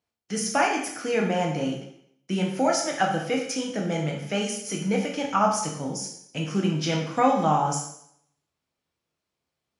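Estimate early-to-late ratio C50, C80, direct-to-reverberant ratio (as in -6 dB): 5.0 dB, 8.0 dB, 0.0 dB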